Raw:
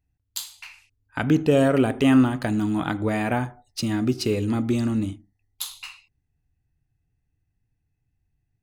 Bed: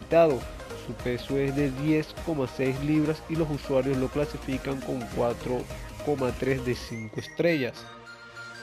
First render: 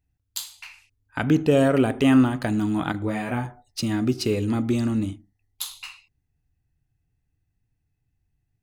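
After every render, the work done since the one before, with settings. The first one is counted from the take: 2.92–3.45 detuned doubles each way 17 cents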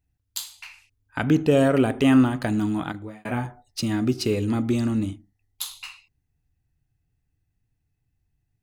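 2.66–3.25 fade out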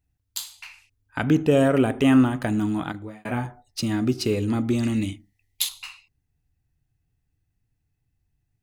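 1.33–2.69 bell 4400 Hz -10.5 dB 0.21 oct; 4.83–5.69 resonant high shelf 1700 Hz +6 dB, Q 3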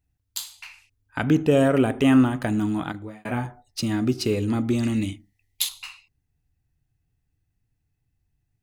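nothing audible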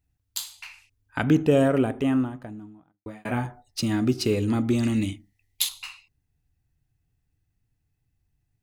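1.19–3.06 studio fade out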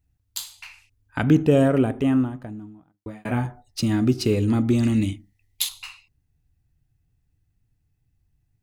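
low shelf 270 Hz +5.5 dB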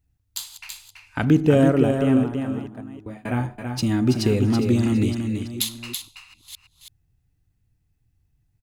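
reverse delay 0.468 s, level -13.5 dB; echo 0.33 s -6 dB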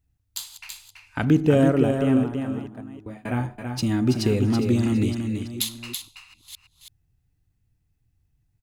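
gain -1.5 dB

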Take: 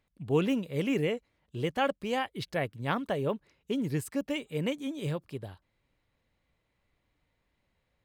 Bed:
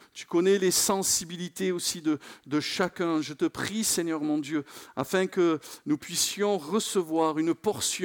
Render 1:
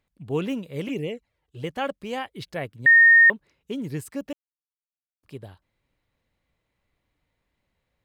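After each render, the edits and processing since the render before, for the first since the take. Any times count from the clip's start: 0.88–1.64 envelope flanger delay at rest 3.2 ms, full sweep at -24 dBFS; 2.86–3.3 bleep 1840 Hz -10 dBFS; 4.33–5.23 mute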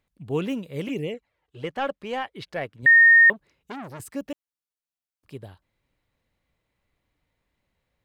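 1.14–2.83 overdrive pedal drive 10 dB, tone 2000 Hz, clips at -15 dBFS; 3.33–4 core saturation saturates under 1500 Hz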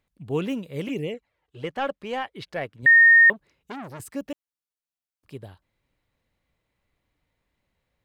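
nothing audible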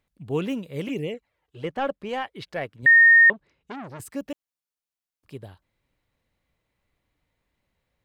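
1.65–2.09 tilt shelf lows +3 dB; 3.3–3.99 air absorption 75 m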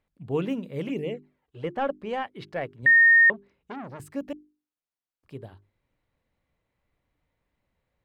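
high shelf 3000 Hz -9.5 dB; notches 50/100/150/200/250/300/350/400 Hz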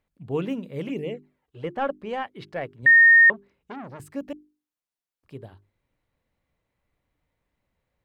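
dynamic EQ 1300 Hz, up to +5 dB, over -31 dBFS, Q 1.3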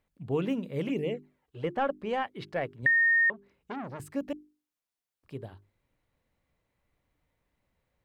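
compressor 4:1, threshold -24 dBFS, peak gain reduction 10 dB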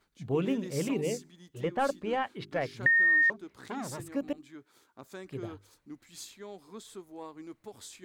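add bed -19 dB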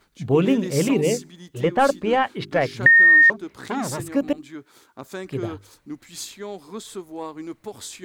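gain +11 dB

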